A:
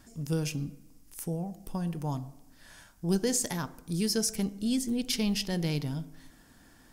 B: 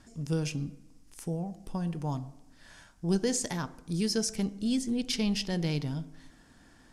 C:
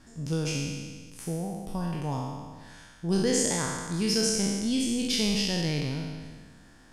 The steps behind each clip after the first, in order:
Bessel low-pass 7800 Hz, order 4
spectral trails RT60 1.58 s

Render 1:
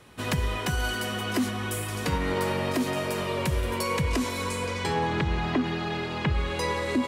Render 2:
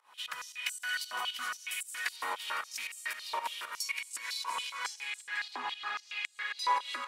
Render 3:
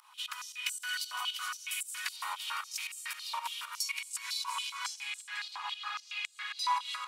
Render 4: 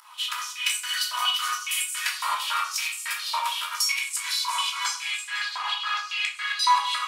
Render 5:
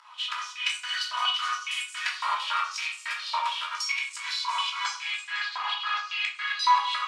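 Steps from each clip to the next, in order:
pump 115 bpm, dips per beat 2, -23 dB, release 0.181 s; multi-head echo 0.169 s, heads all three, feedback 41%, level -13.5 dB; stepped high-pass 7.2 Hz 950–7900 Hz; gain -6.5 dB
HPF 980 Hz 24 dB/oct; bell 1800 Hz -9 dB 0.59 oct; upward compressor, threshold -58 dBFS; gain +2.5 dB
shoebox room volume 430 m³, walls furnished, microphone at 2.9 m; gain +6.5 dB
air absorption 120 m

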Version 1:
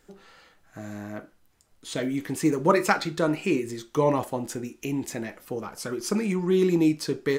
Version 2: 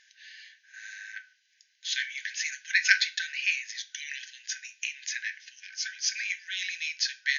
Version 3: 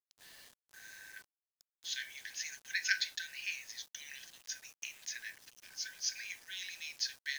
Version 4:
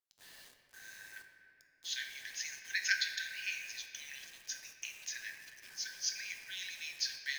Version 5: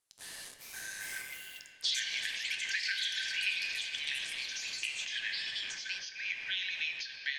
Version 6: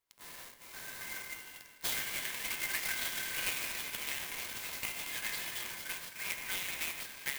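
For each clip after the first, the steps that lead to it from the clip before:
FFT band-pass 1500–6800 Hz; gain +8 dB
bit-crush 8-bit; bell 2200 Hz -7 dB 1 oct; gain -6.5 dB
reverb RT60 2.9 s, pre-delay 8 ms, DRR 5 dB
compressor 6:1, threshold -45 dBFS, peak gain reduction 18 dB; low-pass sweep 10000 Hz -> 3100 Hz, 1.25–2.01; echoes that change speed 0.454 s, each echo +5 st, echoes 2; gain +8.5 dB
spectral whitening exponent 0.6; small resonant body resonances 1000/2100 Hz, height 11 dB; clock jitter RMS 0.053 ms; gain -2.5 dB

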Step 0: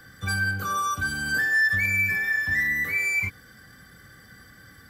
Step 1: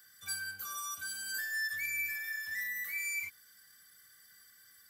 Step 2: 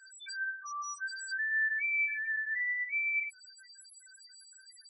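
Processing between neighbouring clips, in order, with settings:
pre-emphasis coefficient 0.97; gain -2.5 dB
delta modulation 64 kbps, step -42.5 dBFS; loudest bins only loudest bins 2; gain +7 dB

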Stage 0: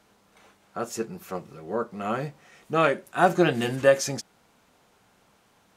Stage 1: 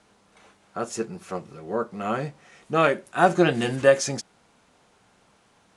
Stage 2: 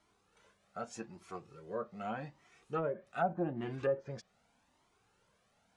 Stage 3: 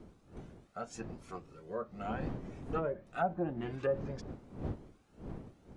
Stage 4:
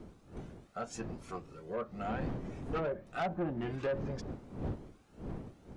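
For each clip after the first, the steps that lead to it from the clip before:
steep low-pass 11000 Hz 96 dB/oct; gain +1.5 dB
treble ducked by the level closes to 660 Hz, closed at -16 dBFS; cascading flanger rising 0.83 Hz; gain -8 dB
wind noise 280 Hz -46 dBFS
soft clip -32.5 dBFS, distortion -10 dB; gain +3.5 dB

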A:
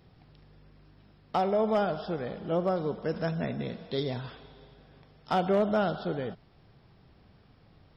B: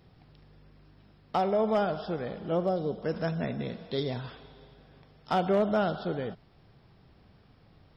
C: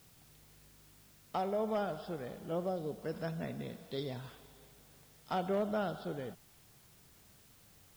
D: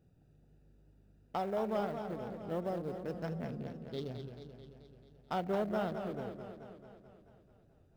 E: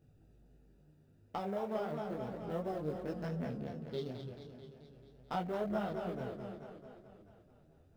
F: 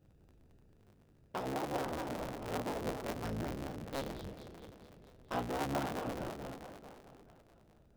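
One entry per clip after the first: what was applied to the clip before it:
spectral gain 2.66–3.02, 810–2800 Hz -8 dB
added noise white -56 dBFS; gain -8 dB
Wiener smoothing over 41 samples; warbling echo 0.218 s, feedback 62%, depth 118 cents, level -8 dB
compressor 2:1, threshold -38 dBFS, peak gain reduction 5 dB; detuned doubles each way 12 cents; gain +5 dB
cycle switcher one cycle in 3, inverted

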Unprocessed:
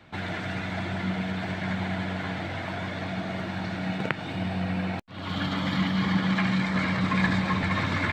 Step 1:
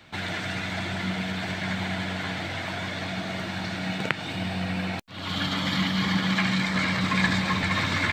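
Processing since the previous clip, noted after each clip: high shelf 2600 Hz +11.5 dB; gain -1 dB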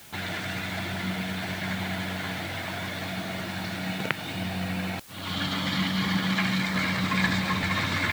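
requantised 8-bit, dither triangular; gain -1.5 dB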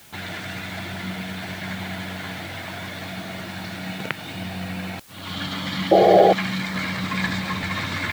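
painted sound noise, 5.91–6.33, 320–820 Hz -13 dBFS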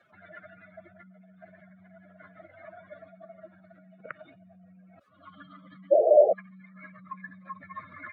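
spectral contrast raised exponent 2.7; double band-pass 850 Hz, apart 1 oct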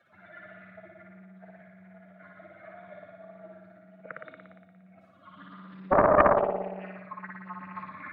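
flutter echo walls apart 10 m, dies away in 1.3 s; Doppler distortion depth 0.61 ms; gain -2 dB

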